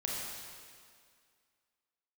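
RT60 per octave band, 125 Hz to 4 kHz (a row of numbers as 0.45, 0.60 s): 1.8, 2.1, 2.1, 2.1, 2.0, 1.9 s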